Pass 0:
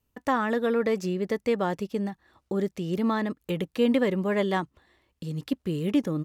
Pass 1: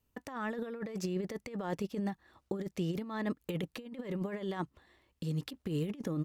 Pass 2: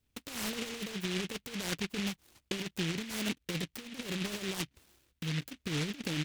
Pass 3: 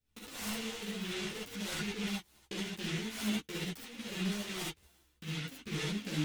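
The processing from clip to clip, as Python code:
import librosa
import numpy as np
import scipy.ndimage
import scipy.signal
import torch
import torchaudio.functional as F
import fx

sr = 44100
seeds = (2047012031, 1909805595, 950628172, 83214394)

y1 = fx.over_compress(x, sr, threshold_db=-29.0, ratio=-0.5)
y1 = y1 * librosa.db_to_amplitude(-6.0)
y2 = fx.env_lowpass_down(y1, sr, base_hz=1600.0, full_db=-30.5)
y2 = fx.noise_mod_delay(y2, sr, seeds[0], noise_hz=2600.0, depth_ms=0.34)
y3 = fx.rev_gated(y2, sr, seeds[1], gate_ms=90, shape='rising', drr_db=-4.5)
y3 = fx.ensemble(y3, sr)
y3 = y3 * librosa.db_to_amplitude(-4.0)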